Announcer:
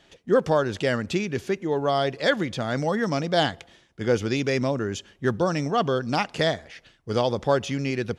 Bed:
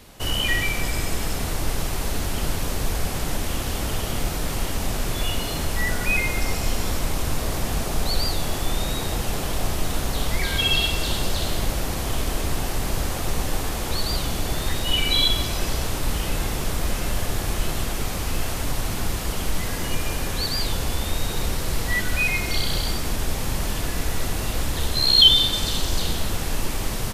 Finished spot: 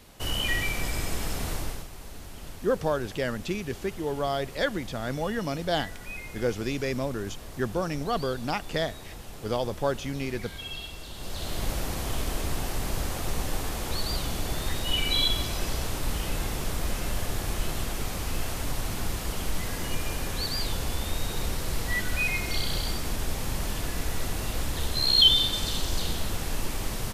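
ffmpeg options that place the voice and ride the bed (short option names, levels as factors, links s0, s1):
-filter_complex "[0:a]adelay=2350,volume=0.531[s0];[1:a]volume=2.24,afade=t=out:st=1.53:d=0.34:silence=0.251189,afade=t=in:st=11.14:d=0.57:silence=0.251189[s1];[s0][s1]amix=inputs=2:normalize=0"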